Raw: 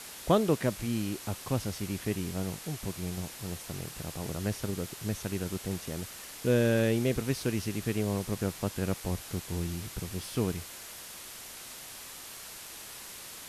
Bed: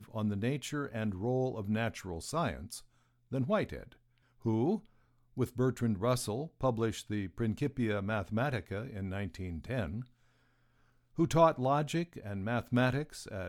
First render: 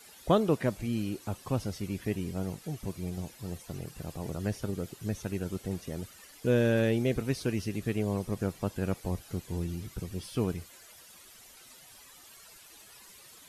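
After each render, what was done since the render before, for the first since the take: denoiser 13 dB, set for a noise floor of -45 dBFS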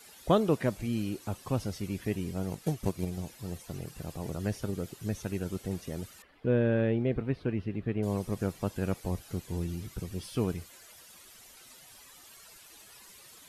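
2.51–3.05 transient shaper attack +10 dB, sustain -1 dB; 6.22–8.03 air absorption 460 m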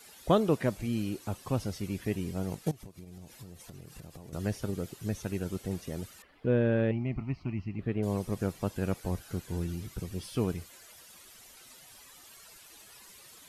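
2.71–4.33 compressor 16:1, threshold -42 dBFS; 6.91–7.79 fixed phaser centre 2400 Hz, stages 8; 8.99–9.73 bell 1500 Hz +7 dB 0.3 oct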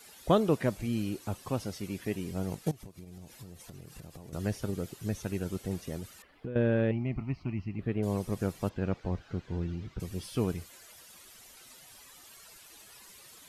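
1.49–2.31 low shelf 97 Hz -10.5 dB; 5.96–6.56 compressor 10:1, threshold -33 dBFS; 8.69–10 air absorption 190 m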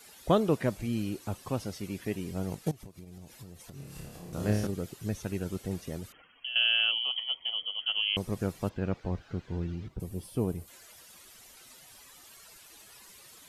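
3.73–4.67 flutter echo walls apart 4.9 m, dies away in 0.76 s; 6.12–8.17 inverted band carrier 3200 Hz; 9.88–10.68 band shelf 2900 Hz -9.5 dB 2.8 oct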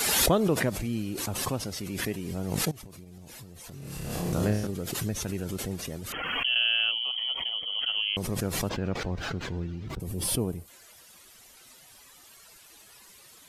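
backwards sustainer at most 26 dB/s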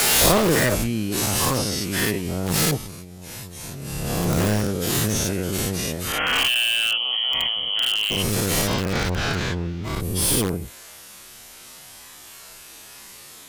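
spectral dilation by 0.12 s; in parallel at -4 dB: wrapped overs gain 17 dB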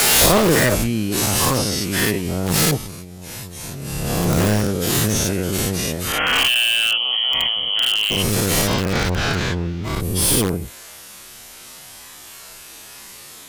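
gain +3.5 dB; limiter -1 dBFS, peak gain reduction 2 dB

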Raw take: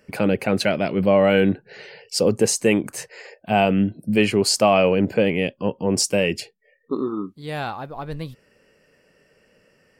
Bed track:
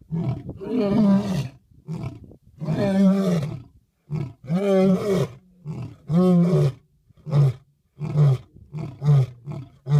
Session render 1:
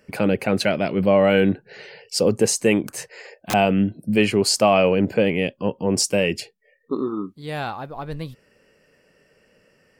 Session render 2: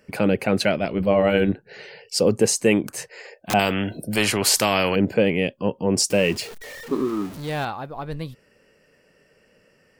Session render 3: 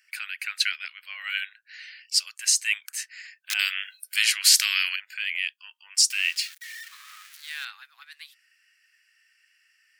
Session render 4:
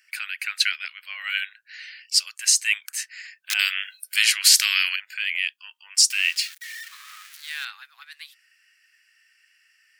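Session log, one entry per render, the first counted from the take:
2.85–3.54 wrapped overs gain 18.5 dB
0.77–1.67 AM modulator 110 Hz, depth 35%; 3.59–4.96 spectral compressor 2:1; 6.1–7.65 zero-crossing step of -32.5 dBFS
steep high-pass 1600 Hz 36 dB/oct; dynamic EQ 4400 Hz, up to +4 dB, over -35 dBFS, Q 1.1
gain +3 dB; limiter -3 dBFS, peak gain reduction 1.5 dB

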